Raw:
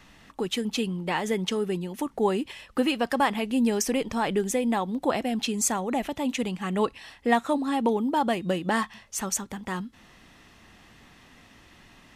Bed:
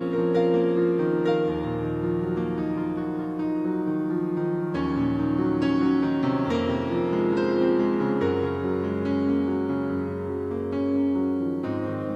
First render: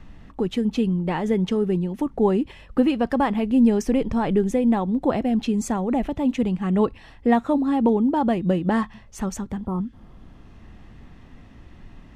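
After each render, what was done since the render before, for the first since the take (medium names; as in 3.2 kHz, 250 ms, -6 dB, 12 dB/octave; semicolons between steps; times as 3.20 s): 9.66–10.51 s: spectral replace 1.4–8.9 kHz both; tilt EQ -3.5 dB/octave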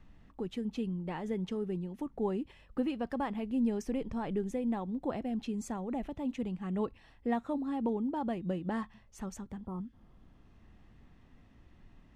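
trim -13.5 dB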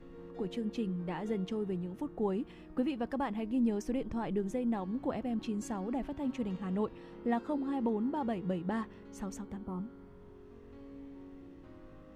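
add bed -26 dB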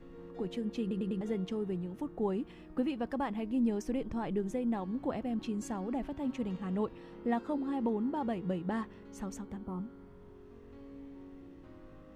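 0.81 s: stutter in place 0.10 s, 4 plays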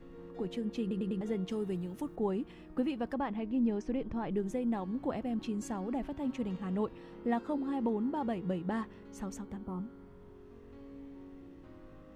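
1.49–2.16 s: treble shelf 3.7 kHz +11 dB; 3.14–4.34 s: distance through air 120 m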